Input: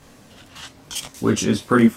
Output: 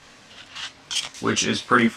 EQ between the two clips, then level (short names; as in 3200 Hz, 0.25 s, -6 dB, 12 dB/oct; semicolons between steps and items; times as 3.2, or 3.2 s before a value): air absorption 66 m; tilt shelf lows -8.5 dB, about 890 Hz; high shelf 9500 Hz -9.5 dB; +1.0 dB